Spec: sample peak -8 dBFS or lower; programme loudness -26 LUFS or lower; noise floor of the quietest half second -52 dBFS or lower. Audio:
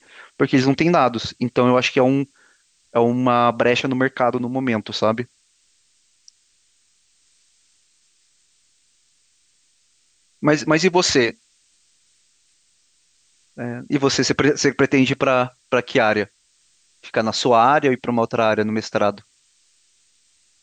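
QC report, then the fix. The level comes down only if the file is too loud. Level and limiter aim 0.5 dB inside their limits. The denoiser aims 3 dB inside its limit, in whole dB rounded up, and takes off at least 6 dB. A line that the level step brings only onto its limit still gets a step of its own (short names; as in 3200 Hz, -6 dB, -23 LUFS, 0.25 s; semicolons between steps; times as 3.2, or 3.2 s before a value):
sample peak -4.5 dBFS: fail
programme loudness -19.0 LUFS: fail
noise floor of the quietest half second -62 dBFS: OK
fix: gain -7.5 dB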